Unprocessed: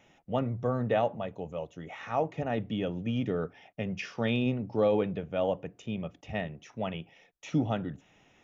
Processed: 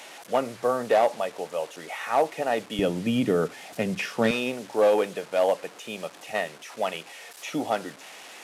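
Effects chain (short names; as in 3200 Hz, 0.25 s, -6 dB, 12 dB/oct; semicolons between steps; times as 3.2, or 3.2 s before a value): delta modulation 64 kbps, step -46 dBFS; HPF 460 Hz 12 dB/oct, from 2.79 s 200 Hz, from 4.31 s 500 Hz; gain +9 dB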